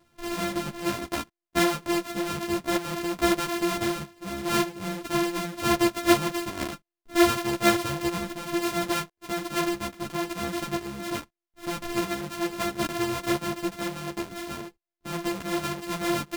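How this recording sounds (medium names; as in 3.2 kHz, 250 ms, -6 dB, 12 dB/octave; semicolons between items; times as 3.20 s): a buzz of ramps at a fixed pitch in blocks of 128 samples; a shimmering, thickened sound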